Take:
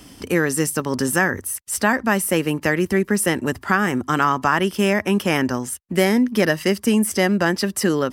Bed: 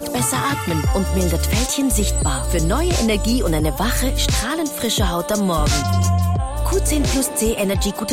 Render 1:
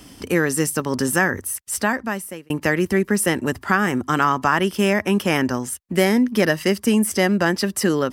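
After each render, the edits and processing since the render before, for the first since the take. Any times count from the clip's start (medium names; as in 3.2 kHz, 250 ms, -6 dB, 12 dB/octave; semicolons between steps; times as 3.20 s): 1.67–2.50 s: fade out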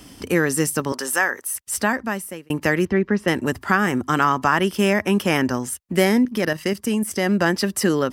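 0.92–1.55 s: high-pass 550 Hz; 2.85–3.28 s: distance through air 230 m; 6.25–7.28 s: level held to a coarse grid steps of 10 dB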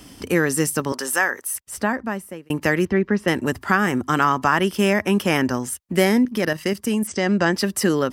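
1.60–2.46 s: treble shelf 2.2 kHz -8.5 dB; 7.07–7.53 s: steep low-pass 8.1 kHz 48 dB/octave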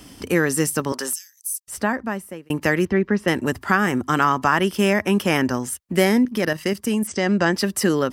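1.13–1.68 s: inverse Chebyshev high-pass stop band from 820 Hz, stop band 80 dB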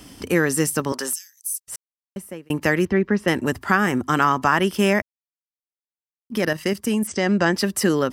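1.76–2.16 s: mute; 5.02–6.30 s: mute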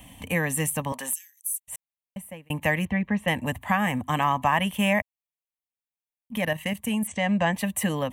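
static phaser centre 1.4 kHz, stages 6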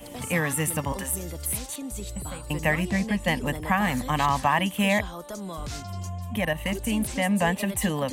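add bed -17 dB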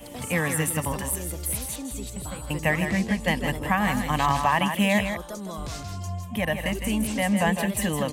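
multi-tap echo 147/161 ms -19.5/-7.5 dB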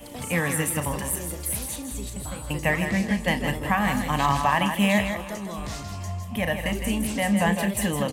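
doubling 35 ms -11 dB; feedback delay 370 ms, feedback 60%, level -19 dB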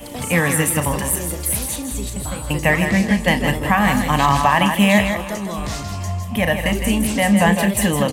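trim +7.5 dB; peak limiter -3 dBFS, peak gain reduction 2 dB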